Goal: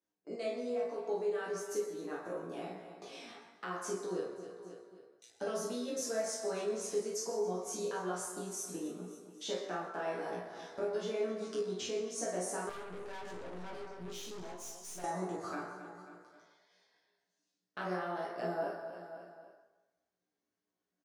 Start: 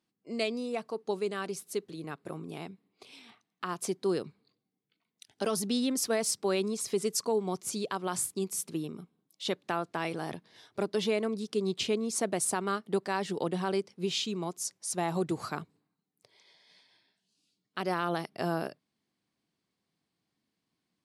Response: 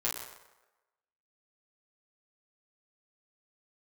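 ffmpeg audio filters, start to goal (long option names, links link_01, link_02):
-filter_complex "[0:a]tiltshelf=frequency=880:gain=6,asplit=2[link_01][link_02];[link_02]adelay=17,volume=-4dB[link_03];[link_01][link_03]amix=inputs=2:normalize=0,agate=range=-12dB:threshold=-57dB:ratio=16:detection=peak,equalizer=frequency=160:width_type=o:width=0.67:gain=-11,equalizer=frequency=630:width_type=o:width=0.67:gain=5,equalizer=frequency=1600:width_type=o:width=0.67:gain=9,equalizer=frequency=6300:width_type=o:width=0.67:gain=11,aecho=1:1:268|536|804:0.119|0.0499|0.021,acompressor=threshold=-43dB:ratio=2.5,highpass=89[link_04];[1:a]atrim=start_sample=2205[link_05];[link_04][link_05]afir=irnorm=-1:irlink=0,asettb=1/sr,asplit=3[link_06][link_07][link_08];[link_06]atrim=end=12.694[link_09];[link_07]atrim=start=12.69:end=15.04,asetpts=PTS-STARTPTS,afade=type=in:duration=0.004:curve=qsin,afade=type=out:start_time=2.346:duration=0.004:curve=qsin,aeval=exprs='(tanh(100*val(0)+0.55)-tanh(0.55))/100':channel_layout=same[link_10];[link_08]atrim=start=15.036[link_11];[link_09][link_10]acrossfade=duration=0.004:curve1=hsin:curve2=qsin[link_12];[link_12][link_11]acrossfade=duration=0.004:curve1=qsin:curve2=hsin,flanger=delay=9.2:depth=7.8:regen=73:speed=0.53:shape=sinusoidal,volume=1dB"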